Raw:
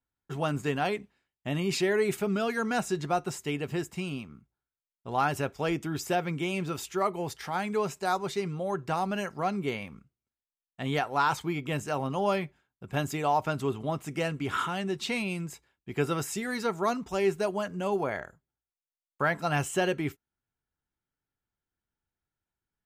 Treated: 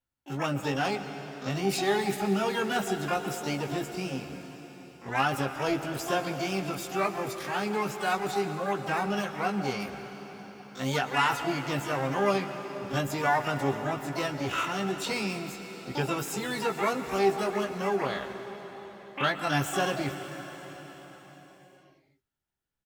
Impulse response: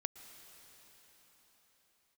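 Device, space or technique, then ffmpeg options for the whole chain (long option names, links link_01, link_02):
shimmer-style reverb: -filter_complex "[0:a]asettb=1/sr,asplit=3[link_01][link_02][link_03];[link_01]atrim=end=9.804[link_04];[link_02]atrim=start=9.8:end=10.96,asetpts=PTS-STARTPTS,afade=type=in:duration=0.004:curve=qsin,afade=type=out:start_time=1.156:duration=0.004:curve=qsin,aemphasis=mode=production:type=50fm[link_05];[link_03]atrim=start=10.956[link_06];[link_04][link_05]acrossfade=duration=0.004:curve1=hsin:curve2=qsin[link_07];[link_07][link_06]acrossfade=duration=0.004:curve1=qsin:curve2=hsin,asplit=2[link_08][link_09];[link_09]adelay=15,volume=-5.5dB[link_10];[link_08][link_10]amix=inputs=2:normalize=0,asplit=2[link_11][link_12];[link_12]asetrate=88200,aresample=44100,atempo=0.5,volume=-5dB[link_13];[link_11][link_13]amix=inputs=2:normalize=0[link_14];[1:a]atrim=start_sample=2205[link_15];[link_14][link_15]afir=irnorm=-1:irlink=0"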